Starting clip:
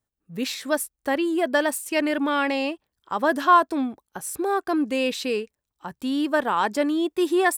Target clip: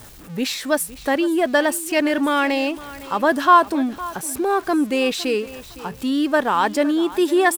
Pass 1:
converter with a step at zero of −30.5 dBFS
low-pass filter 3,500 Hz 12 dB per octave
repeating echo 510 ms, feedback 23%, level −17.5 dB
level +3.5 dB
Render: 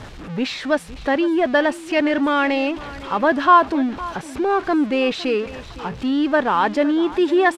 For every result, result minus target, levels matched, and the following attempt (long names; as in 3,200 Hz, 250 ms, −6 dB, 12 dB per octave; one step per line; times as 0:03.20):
converter with a step at zero: distortion +7 dB; 4,000 Hz band −2.0 dB
converter with a step at zero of −38.5 dBFS
low-pass filter 3,500 Hz 12 dB per octave
repeating echo 510 ms, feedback 23%, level −17.5 dB
level +3.5 dB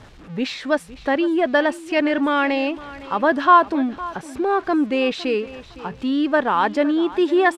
4,000 Hz band −2.5 dB
converter with a step at zero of −38.5 dBFS
repeating echo 510 ms, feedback 23%, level −17.5 dB
level +3.5 dB